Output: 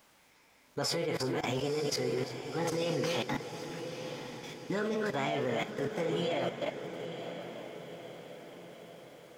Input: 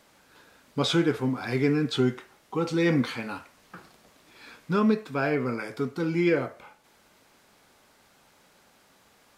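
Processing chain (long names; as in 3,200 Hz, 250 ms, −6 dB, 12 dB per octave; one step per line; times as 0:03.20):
feedback delay that plays each chunk backwards 176 ms, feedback 48%, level −8 dB
output level in coarse steps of 16 dB
formants moved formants +6 semitones
feedback delay with all-pass diffusion 963 ms, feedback 53%, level −9 dB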